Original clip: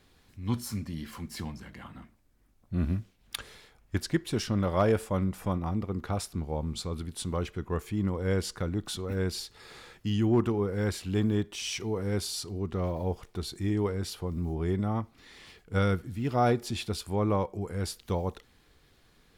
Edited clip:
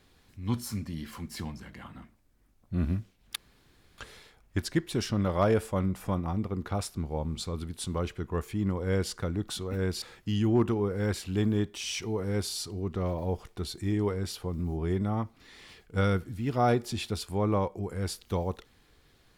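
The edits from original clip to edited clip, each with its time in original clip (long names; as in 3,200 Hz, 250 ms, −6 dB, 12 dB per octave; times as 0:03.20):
0:03.36: splice in room tone 0.62 s
0:09.40–0:09.80: remove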